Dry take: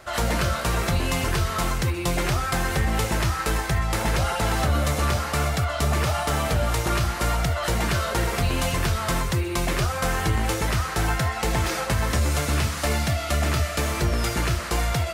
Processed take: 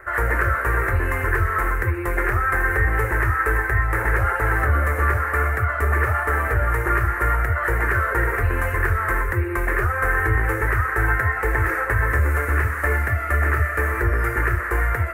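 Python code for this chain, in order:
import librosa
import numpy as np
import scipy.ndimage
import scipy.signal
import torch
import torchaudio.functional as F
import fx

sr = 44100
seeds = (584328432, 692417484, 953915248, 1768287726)

y = fx.curve_eq(x, sr, hz=(110.0, 150.0, 410.0, 680.0, 1800.0, 3400.0, 5200.0, 13000.0), db=(0, -24, 3, -9, 9, -29, -28, -5))
y = y * 10.0 ** (3.5 / 20.0)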